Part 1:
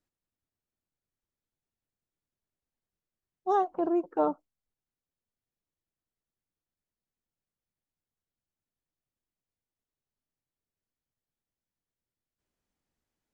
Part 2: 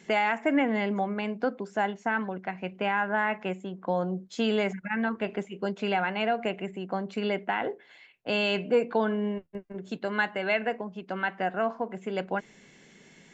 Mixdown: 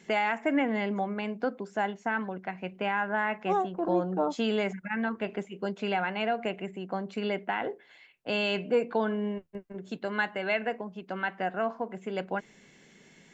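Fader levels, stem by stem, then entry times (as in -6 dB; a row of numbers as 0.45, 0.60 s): -2.0, -2.0 dB; 0.00, 0.00 s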